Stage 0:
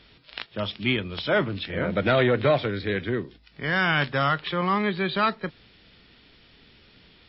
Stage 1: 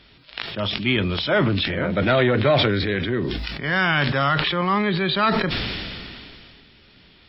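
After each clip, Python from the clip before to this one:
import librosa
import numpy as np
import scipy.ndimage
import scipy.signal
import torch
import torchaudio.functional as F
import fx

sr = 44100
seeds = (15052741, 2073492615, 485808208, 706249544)

y = fx.notch(x, sr, hz=470.0, q=12.0)
y = fx.sustainer(y, sr, db_per_s=24.0)
y = F.gain(torch.from_numpy(y), 2.5).numpy()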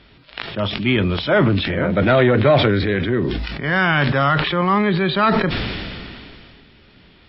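y = fx.high_shelf(x, sr, hz=3500.0, db=-11.0)
y = F.gain(torch.from_numpy(y), 4.5).numpy()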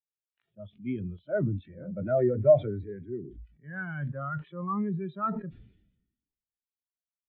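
y = fx.spectral_expand(x, sr, expansion=2.5)
y = F.gain(torch.from_numpy(y), -8.5).numpy()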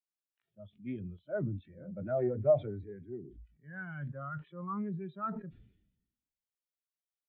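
y = fx.doppler_dist(x, sr, depth_ms=0.14)
y = F.gain(torch.from_numpy(y), -6.5).numpy()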